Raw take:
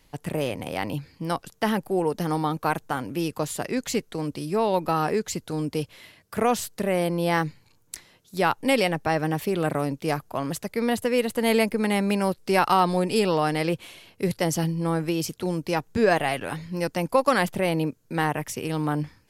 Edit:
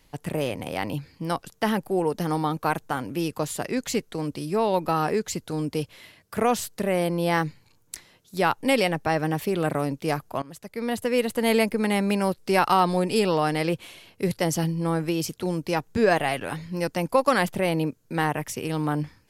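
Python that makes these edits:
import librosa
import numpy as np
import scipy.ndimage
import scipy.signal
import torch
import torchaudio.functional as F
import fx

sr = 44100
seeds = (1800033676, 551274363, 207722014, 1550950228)

y = fx.edit(x, sr, fx.fade_in_from(start_s=10.42, length_s=0.75, floor_db=-19.0), tone=tone)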